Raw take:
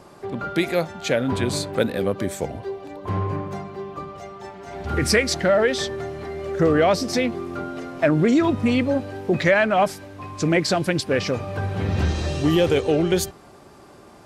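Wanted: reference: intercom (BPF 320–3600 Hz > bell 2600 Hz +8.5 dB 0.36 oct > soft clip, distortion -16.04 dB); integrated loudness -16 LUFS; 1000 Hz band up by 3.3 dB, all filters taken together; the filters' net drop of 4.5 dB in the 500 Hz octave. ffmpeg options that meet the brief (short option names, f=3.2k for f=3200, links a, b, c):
-af "highpass=320,lowpass=3.6k,equalizer=f=500:t=o:g=-7,equalizer=f=1k:t=o:g=7.5,equalizer=f=2.6k:t=o:w=0.36:g=8.5,asoftclip=threshold=-12.5dB,volume=9.5dB"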